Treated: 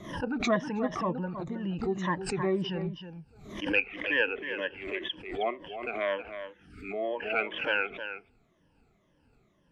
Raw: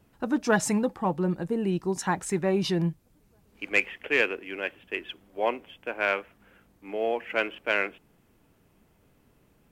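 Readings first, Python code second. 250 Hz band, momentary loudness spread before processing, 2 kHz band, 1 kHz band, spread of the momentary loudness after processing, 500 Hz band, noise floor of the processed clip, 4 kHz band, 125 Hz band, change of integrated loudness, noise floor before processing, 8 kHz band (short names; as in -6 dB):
-4.0 dB, 10 LU, -2.5 dB, -3.0 dB, 13 LU, -3.0 dB, -68 dBFS, 0.0 dB, -4.5 dB, -3.5 dB, -64 dBFS, -12.0 dB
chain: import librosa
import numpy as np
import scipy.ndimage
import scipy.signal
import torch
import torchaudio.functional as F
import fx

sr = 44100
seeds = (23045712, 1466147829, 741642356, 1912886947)

p1 = fx.spec_ripple(x, sr, per_octave=1.2, drift_hz=-2.0, depth_db=21)
p2 = fx.spec_box(p1, sr, start_s=6.39, length_s=0.52, low_hz=460.0, high_hz=1200.0, gain_db=-29)
p3 = scipy.signal.sosfilt(scipy.signal.butter(2, 5500.0, 'lowpass', fs=sr, output='sos'), p2)
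p4 = fx.env_lowpass_down(p3, sr, base_hz=2600.0, full_db=-20.5)
p5 = fx.dynamic_eq(p4, sr, hz=3000.0, q=1.8, threshold_db=-38.0, ratio=4.0, max_db=4)
p6 = p5 + fx.echo_single(p5, sr, ms=316, db=-10.0, dry=0)
p7 = fx.pre_swell(p6, sr, db_per_s=78.0)
y = p7 * 10.0 ** (-8.5 / 20.0)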